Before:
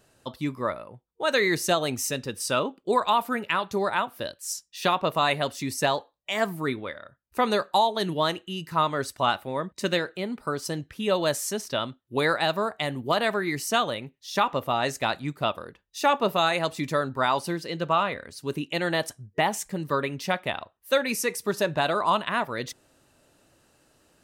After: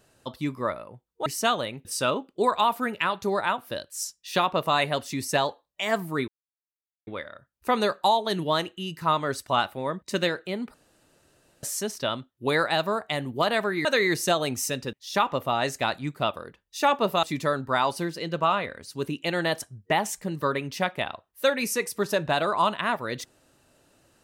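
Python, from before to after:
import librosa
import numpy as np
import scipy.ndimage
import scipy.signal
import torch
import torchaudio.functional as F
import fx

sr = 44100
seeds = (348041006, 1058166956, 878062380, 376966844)

y = fx.edit(x, sr, fx.swap(start_s=1.26, length_s=1.08, other_s=13.55, other_length_s=0.59),
    fx.insert_silence(at_s=6.77, length_s=0.79),
    fx.room_tone_fill(start_s=10.44, length_s=0.89),
    fx.cut(start_s=16.44, length_s=0.27), tone=tone)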